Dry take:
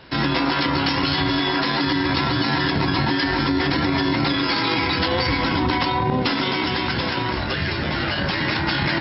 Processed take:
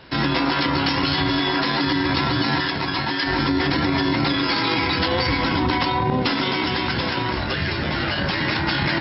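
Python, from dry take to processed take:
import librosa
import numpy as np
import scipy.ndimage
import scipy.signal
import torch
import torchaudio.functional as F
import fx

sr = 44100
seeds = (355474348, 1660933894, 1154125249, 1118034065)

y = fx.low_shelf(x, sr, hz=470.0, db=-8.0, at=(2.6, 3.27))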